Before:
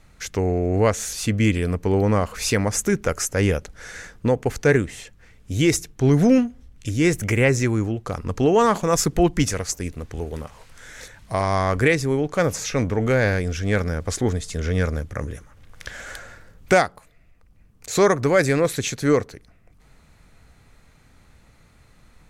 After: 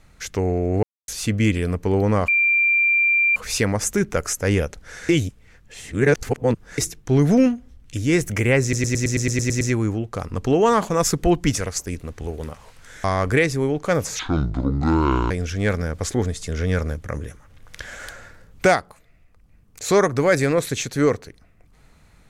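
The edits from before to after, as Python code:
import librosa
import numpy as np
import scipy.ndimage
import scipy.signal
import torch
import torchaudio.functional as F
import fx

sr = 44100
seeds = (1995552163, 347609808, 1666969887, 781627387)

y = fx.edit(x, sr, fx.silence(start_s=0.83, length_s=0.25),
    fx.insert_tone(at_s=2.28, length_s=1.08, hz=2370.0, db=-14.5),
    fx.reverse_span(start_s=4.01, length_s=1.69),
    fx.stutter(start_s=7.54, slice_s=0.11, count=10),
    fx.cut(start_s=10.97, length_s=0.56),
    fx.speed_span(start_s=12.68, length_s=0.69, speed=0.62), tone=tone)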